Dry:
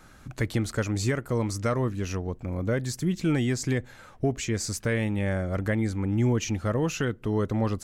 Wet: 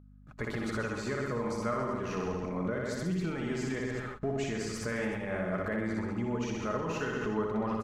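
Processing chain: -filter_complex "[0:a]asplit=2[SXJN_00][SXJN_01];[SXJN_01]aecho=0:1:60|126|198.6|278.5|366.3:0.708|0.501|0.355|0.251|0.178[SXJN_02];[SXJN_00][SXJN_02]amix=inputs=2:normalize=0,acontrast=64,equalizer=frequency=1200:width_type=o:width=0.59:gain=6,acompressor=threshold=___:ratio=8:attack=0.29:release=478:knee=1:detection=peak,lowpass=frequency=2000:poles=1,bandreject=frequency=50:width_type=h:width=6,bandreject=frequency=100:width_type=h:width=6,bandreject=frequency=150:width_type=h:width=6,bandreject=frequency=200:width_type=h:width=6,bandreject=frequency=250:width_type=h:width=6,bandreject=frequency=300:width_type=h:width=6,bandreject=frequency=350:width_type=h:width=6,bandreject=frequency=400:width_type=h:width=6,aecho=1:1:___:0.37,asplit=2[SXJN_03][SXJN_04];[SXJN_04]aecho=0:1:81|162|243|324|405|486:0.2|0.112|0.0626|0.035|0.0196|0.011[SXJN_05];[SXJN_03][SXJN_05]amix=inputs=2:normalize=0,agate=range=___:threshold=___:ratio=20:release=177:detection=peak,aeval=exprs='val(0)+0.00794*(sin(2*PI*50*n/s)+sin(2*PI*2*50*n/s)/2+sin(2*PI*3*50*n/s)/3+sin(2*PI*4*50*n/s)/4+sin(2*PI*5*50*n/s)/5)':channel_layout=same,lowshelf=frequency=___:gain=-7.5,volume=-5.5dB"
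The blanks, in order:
-17dB, 4.8, -37dB, -32dB, 210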